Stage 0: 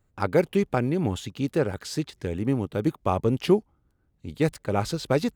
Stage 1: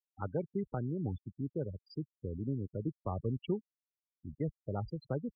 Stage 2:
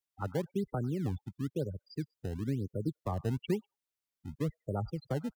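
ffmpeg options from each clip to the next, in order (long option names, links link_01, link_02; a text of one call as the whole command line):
ffmpeg -i in.wav -filter_complex "[0:a]aeval=exprs='val(0)+0.002*(sin(2*PI*50*n/s)+sin(2*PI*2*50*n/s)/2+sin(2*PI*3*50*n/s)/3+sin(2*PI*4*50*n/s)/4+sin(2*PI*5*50*n/s)/5)':channel_layout=same,acrossover=split=160[link_01][link_02];[link_02]acompressor=threshold=-41dB:ratio=1.5[link_03];[link_01][link_03]amix=inputs=2:normalize=0,afftfilt=real='re*gte(hypot(re,im),0.0501)':imag='im*gte(hypot(re,im),0.0501)':win_size=1024:overlap=0.75,volume=-7dB" out.wav
ffmpeg -i in.wav -filter_complex "[0:a]acrossover=split=290|400|1100[link_01][link_02][link_03][link_04];[link_02]acrusher=samples=22:mix=1:aa=0.000001:lfo=1:lforange=35.2:lforate=1[link_05];[link_04]aecho=1:1:98|196:0.224|0.0336[link_06];[link_01][link_05][link_03][link_06]amix=inputs=4:normalize=0,volume=2.5dB" out.wav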